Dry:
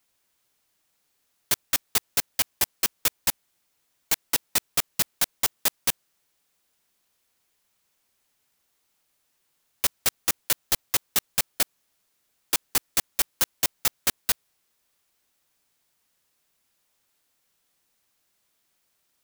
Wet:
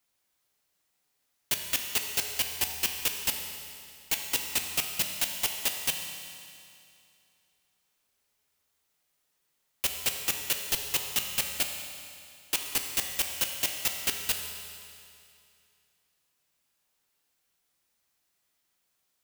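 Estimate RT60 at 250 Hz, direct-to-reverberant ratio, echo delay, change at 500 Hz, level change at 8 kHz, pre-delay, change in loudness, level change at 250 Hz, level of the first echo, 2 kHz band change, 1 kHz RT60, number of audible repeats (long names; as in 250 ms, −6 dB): 2.5 s, 3.0 dB, no echo audible, −4.0 dB, −4.0 dB, 6 ms, −3.5 dB, −4.5 dB, no echo audible, −1.5 dB, 2.5 s, no echo audible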